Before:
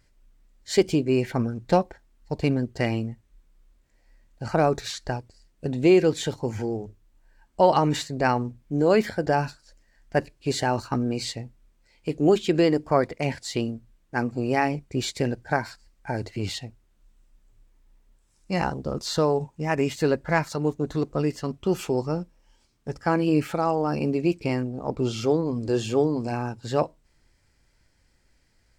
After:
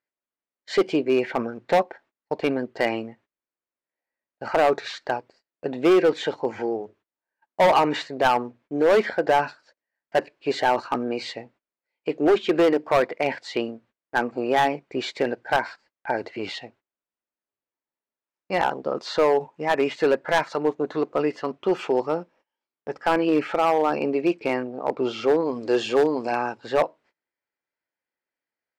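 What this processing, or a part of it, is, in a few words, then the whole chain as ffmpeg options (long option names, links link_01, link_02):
walkie-talkie: -filter_complex "[0:a]highpass=430,lowpass=2600,asoftclip=type=hard:threshold=-20dB,agate=range=-24dB:threshold=-60dB:ratio=16:detection=peak,asettb=1/sr,asplit=3[link_01][link_02][link_03];[link_01]atrim=end=25.404[link_04];[link_02]atrim=start=25.4:end=26.58,asetpts=PTS-STARTPTS,afade=type=in:duration=0.004:curve=qsin,afade=type=out:start_time=1.176:duration=0.004:curve=qsin,equalizer=frequency=7900:width=0.36:gain=7.5[link_05];[link_03]atrim=start=26.576[link_06];[link_04][link_05]acrossfade=duration=0.004:curve1=hsin:curve2=qsin[link_07];[link_07][link_06]acrossfade=duration=0.004:curve1=qsin:curve2=hsin,volume=7dB"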